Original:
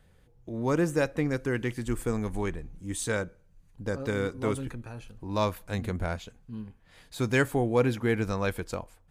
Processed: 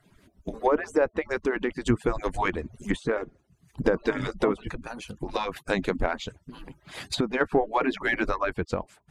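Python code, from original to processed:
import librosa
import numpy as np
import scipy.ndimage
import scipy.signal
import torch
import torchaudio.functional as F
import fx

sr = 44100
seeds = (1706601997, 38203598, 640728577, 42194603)

p1 = fx.hpss_only(x, sr, part='percussive')
p2 = fx.recorder_agc(p1, sr, target_db=-18.5, rise_db_per_s=15.0, max_gain_db=30)
p3 = fx.env_lowpass_down(p2, sr, base_hz=1400.0, full_db=-24.0)
p4 = fx.high_shelf(p3, sr, hz=3400.0, db=-8.0, at=(8.38, 8.78))
p5 = 10.0 ** (-22.5 / 20.0) * np.tanh(p4 / 10.0 ** (-22.5 / 20.0))
p6 = p4 + (p5 * librosa.db_to_amplitude(-8.0))
p7 = fx.tremolo_shape(p6, sr, shape='saw_down', hz=0.54, depth_pct=45)
y = p7 * librosa.db_to_amplitude(5.0)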